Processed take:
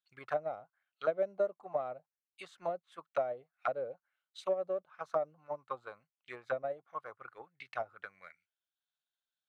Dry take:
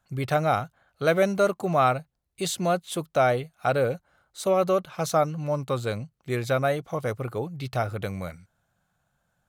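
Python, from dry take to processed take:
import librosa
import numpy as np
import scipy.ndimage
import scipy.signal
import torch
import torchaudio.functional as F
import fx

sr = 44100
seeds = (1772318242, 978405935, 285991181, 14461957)

y = fx.auto_wah(x, sr, base_hz=610.0, top_hz=3700.0, q=3.6, full_db=-20.5, direction='down')
y = fx.transient(y, sr, attack_db=8, sustain_db=-3)
y = fx.dynamic_eq(y, sr, hz=730.0, q=1.0, threshold_db=-32.0, ratio=4.0, max_db=-8)
y = y * 10.0 ** (-6.5 / 20.0)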